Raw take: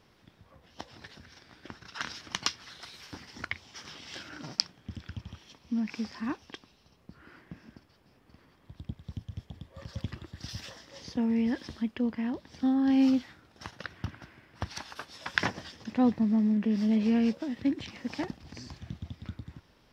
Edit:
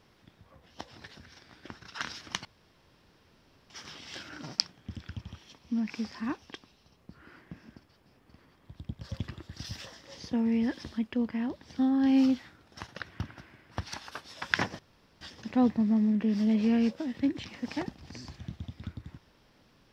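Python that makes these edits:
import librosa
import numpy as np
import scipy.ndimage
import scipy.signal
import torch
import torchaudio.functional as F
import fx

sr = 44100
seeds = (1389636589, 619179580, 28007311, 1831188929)

y = fx.edit(x, sr, fx.room_tone_fill(start_s=2.45, length_s=1.25),
    fx.cut(start_s=9.01, length_s=0.84),
    fx.insert_room_tone(at_s=15.63, length_s=0.42), tone=tone)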